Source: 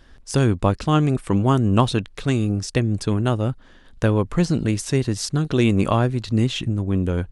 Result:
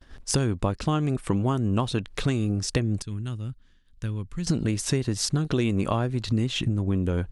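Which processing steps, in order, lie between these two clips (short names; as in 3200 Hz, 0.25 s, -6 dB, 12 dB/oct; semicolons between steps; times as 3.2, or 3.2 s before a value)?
expander -43 dBFS; 3.02–4.47 passive tone stack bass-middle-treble 6-0-2; compressor 5:1, threshold -27 dBFS, peak gain reduction 14.5 dB; gain +5 dB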